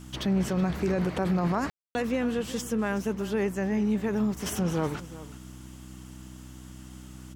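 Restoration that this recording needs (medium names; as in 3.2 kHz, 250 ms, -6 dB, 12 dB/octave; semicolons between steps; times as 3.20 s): de-hum 63.3 Hz, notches 5; room tone fill 1.70–1.95 s; inverse comb 372 ms -16.5 dB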